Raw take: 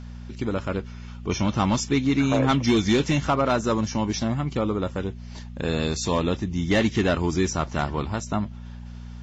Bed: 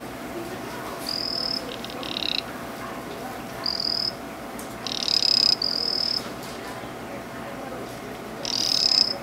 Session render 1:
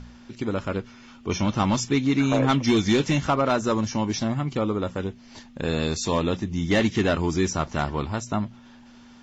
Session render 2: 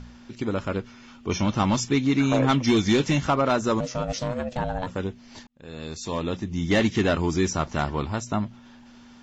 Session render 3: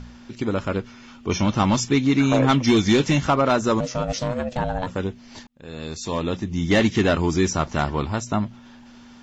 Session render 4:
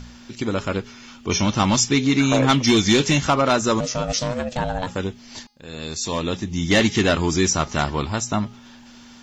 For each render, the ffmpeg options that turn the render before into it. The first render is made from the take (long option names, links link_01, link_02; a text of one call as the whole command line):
ffmpeg -i in.wav -af "bandreject=frequency=60:width_type=h:width=4,bandreject=frequency=120:width_type=h:width=4,bandreject=frequency=180:width_type=h:width=4" out.wav
ffmpeg -i in.wav -filter_complex "[0:a]asplit=3[link_01][link_02][link_03];[link_01]afade=type=out:start_time=3.79:duration=0.02[link_04];[link_02]aeval=exprs='val(0)*sin(2*PI*370*n/s)':channel_layout=same,afade=type=in:start_time=3.79:duration=0.02,afade=type=out:start_time=4.86:duration=0.02[link_05];[link_03]afade=type=in:start_time=4.86:duration=0.02[link_06];[link_04][link_05][link_06]amix=inputs=3:normalize=0,asplit=2[link_07][link_08];[link_07]atrim=end=5.47,asetpts=PTS-STARTPTS,afade=type=out:start_time=5.466:duration=0.004:curve=hsin[link_09];[link_08]atrim=start=5.47,asetpts=PTS-STARTPTS,afade=type=in:duration=1.24[link_10];[link_09][link_10]concat=n=2:v=0:a=1" out.wav
ffmpeg -i in.wav -af "volume=3dB" out.wav
ffmpeg -i in.wav -af "highshelf=frequency=2900:gain=9.5,bandreject=frequency=414.2:width_type=h:width=4,bandreject=frequency=828.4:width_type=h:width=4,bandreject=frequency=1242.6:width_type=h:width=4,bandreject=frequency=1656.8:width_type=h:width=4,bandreject=frequency=2071:width_type=h:width=4,bandreject=frequency=2485.2:width_type=h:width=4,bandreject=frequency=2899.4:width_type=h:width=4,bandreject=frequency=3313.6:width_type=h:width=4,bandreject=frequency=3727.8:width_type=h:width=4,bandreject=frequency=4142:width_type=h:width=4,bandreject=frequency=4556.2:width_type=h:width=4,bandreject=frequency=4970.4:width_type=h:width=4,bandreject=frequency=5384.6:width_type=h:width=4,bandreject=frequency=5798.8:width_type=h:width=4,bandreject=frequency=6213:width_type=h:width=4" out.wav